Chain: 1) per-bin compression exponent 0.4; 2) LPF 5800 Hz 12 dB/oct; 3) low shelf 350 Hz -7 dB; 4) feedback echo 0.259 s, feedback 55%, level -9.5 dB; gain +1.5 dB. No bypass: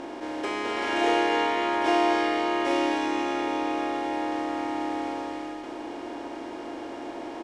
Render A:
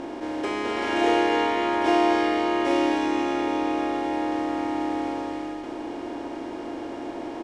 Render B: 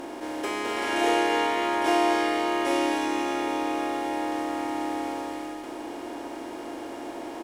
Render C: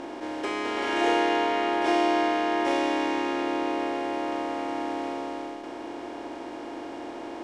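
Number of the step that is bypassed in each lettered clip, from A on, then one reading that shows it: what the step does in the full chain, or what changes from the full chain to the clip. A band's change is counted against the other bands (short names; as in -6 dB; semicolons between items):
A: 3, 125 Hz band +5.5 dB; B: 2, 8 kHz band +5.5 dB; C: 4, echo-to-direct -8.0 dB to none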